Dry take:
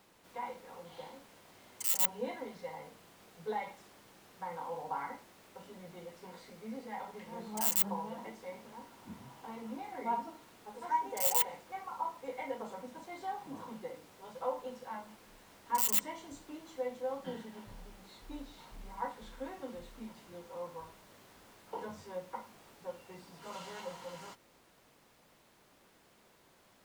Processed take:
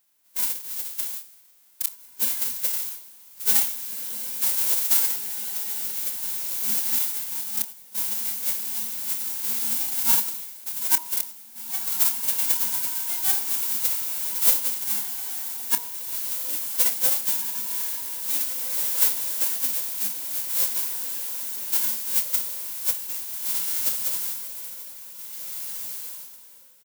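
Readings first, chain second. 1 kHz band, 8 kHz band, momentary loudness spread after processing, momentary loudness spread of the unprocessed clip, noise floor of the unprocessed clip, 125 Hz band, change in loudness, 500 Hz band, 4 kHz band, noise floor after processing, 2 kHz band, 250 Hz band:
-3.5 dB, +16.5 dB, 11 LU, 22 LU, -65 dBFS, no reading, +14.0 dB, -6.0 dB, +16.0 dB, -49 dBFS, +10.0 dB, -2.0 dB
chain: formants flattened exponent 0.1; inverted gate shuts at -18 dBFS, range -32 dB; RIAA curve recording; echo that smears into a reverb 1984 ms, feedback 48%, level -7 dB; level rider gain up to 5 dB; peaking EQ 230 Hz +3.5 dB 1.3 oct; de-hum 68.77 Hz, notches 19; gate -33 dBFS, range -7 dB; doubling 27 ms -11.5 dB; tape noise reduction on one side only decoder only; trim -1 dB

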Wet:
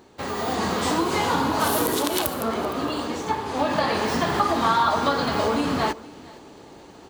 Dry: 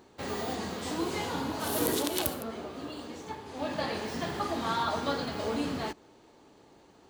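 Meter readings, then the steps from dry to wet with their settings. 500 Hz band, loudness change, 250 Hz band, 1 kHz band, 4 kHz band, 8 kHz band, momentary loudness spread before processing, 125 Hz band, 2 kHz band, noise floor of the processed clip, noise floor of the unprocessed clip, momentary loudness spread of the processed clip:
+9.0 dB, +9.5 dB, +8.5 dB, +12.0 dB, +8.0 dB, +7.0 dB, 12 LU, +8.5 dB, +10.5 dB, -46 dBFS, -58 dBFS, 7 LU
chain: compression, threshold -33 dBFS, peak gain reduction 10 dB; delay 463 ms -21 dB; dynamic bell 1.1 kHz, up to +6 dB, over -53 dBFS, Q 1.5; level rider gain up to 7.5 dB; trim +5 dB

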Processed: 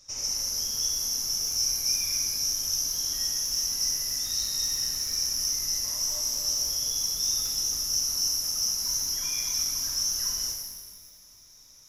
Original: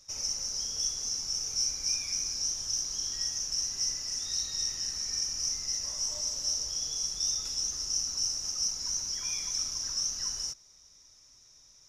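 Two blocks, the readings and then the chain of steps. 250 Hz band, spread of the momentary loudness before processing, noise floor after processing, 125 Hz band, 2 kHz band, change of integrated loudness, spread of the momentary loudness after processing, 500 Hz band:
+5.0 dB, 3 LU, -53 dBFS, +4.5 dB, +4.0 dB, +4.5 dB, 2 LU, +4.0 dB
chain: pitch-shifted reverb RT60 1.4 s, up +12 st, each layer -8 dB, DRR 1 dB; trim +1.5 dB

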